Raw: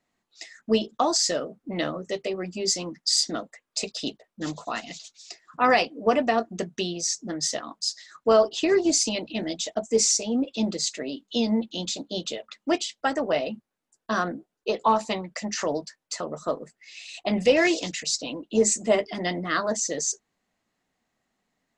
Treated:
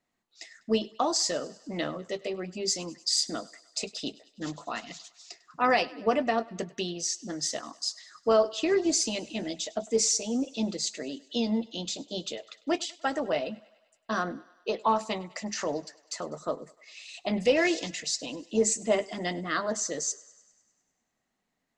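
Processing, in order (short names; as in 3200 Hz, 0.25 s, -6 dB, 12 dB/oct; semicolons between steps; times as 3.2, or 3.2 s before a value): thinning echo 0.1 s, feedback 63%, high-pass 400 Hz, level -21.5 dB; gain -4 dB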